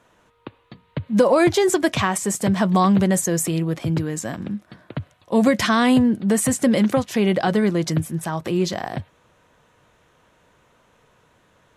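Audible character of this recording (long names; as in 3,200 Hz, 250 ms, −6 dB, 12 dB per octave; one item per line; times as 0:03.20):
background noise floor −60 dBFS
spectral slope −5.0 dB per octave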